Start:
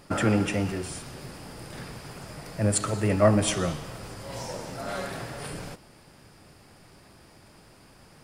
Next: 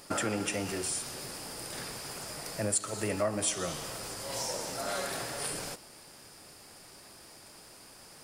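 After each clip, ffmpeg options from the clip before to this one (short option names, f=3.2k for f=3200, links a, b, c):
-af "bass=f=250:g=-9,treble=f=4k:g=9,acompressor=threshold=-30dB:ratio=3"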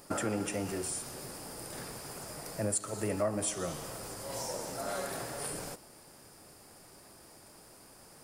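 -af "equalizer=f=3.5k:t=o:w=2.4:g=-7.5"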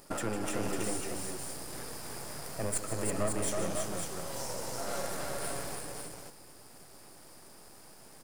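-filter_complex "[0:a]aeval=exprs='if(lt(val(0),0),0.251*val(0),val(0))':c=same,asplit=2[a][b];[b]aecho=0:1:153|326|549:0.299|0.668|0.562[c];[a][c]amix=inputs=2:normalize=0,volume=1.5dB"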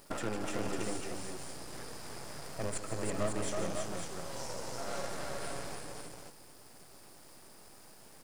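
-filter_complex "[0:a]acrusher=bits=7:dc=4:mix=0:aa=0.000001,acrossover=split=8300[a][b];[b]acompressor=threshold=-56dB:ratio=4:attack=1:release=60[c];[a][c]amix=inputs=2:normalize=0,volume=-1.5dB"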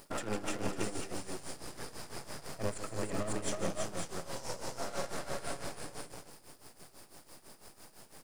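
-af "tremolo=f=6:d=0.78,volume=3.5dB"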